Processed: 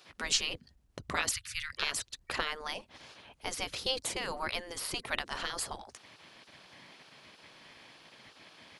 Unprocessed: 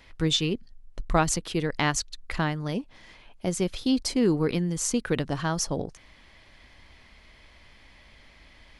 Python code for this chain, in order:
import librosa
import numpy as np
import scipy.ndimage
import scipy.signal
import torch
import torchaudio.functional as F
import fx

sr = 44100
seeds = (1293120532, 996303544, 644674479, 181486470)

y = fx.spec_gate(x, sr, threshold_db=-15, keep='weak')
y = fx.cheby2_bandstop(y, sr, low_hz=260.0, high_hz=750.0, order=4, stop_db=50, at=(1.31, 1.72), fade=0.02)
y = y * librosa.db_to_amplitude(3.0)